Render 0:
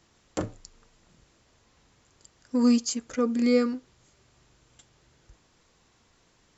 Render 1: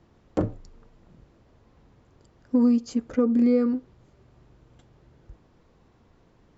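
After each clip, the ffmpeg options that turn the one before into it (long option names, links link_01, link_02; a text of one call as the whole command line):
ffmpeg -i in.wav -af "lowpass=5300,tiltshelf=frequency=1300:gain=8.5,acompressor=threshold=-17dB:ratio=6" out.wav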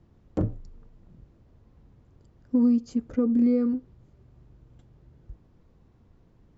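ffmpeg -i in.wav -af "lowshelf=frequency=290:gain=12,volume=-8dB" out.wav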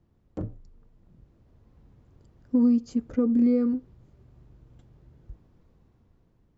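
ffmpeg -i in.wav -af "dynaudnorm=framelen=380:gausssize=7:maxgain=8dB,volume=-7.5dB" out.wav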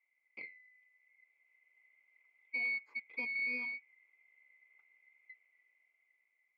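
ffmpeg -i in.wav -af "afftfilt=real='real(if(lt(b,920),b+92*(1-2*mod(floor(b/92),2)),b),0)':imag='imag(if(lt(b,920),b+92*(1-2*mod(floor(b/92),2)),b),0)':win_size=2048:overlap=0.75,aeval=exprs='0.237*(cos(1*acos(clip(val(0)/0.237,-1,1)))-cos(1*PI/2))+0.0668*(cos(4*acos(clip(val(0)/0.237,-1,1)))-cos(4*PI/2))':channel_layout=same,asuperpass=centerf=790:order=4:qfactor=0.75,volume=-5dB" out.wav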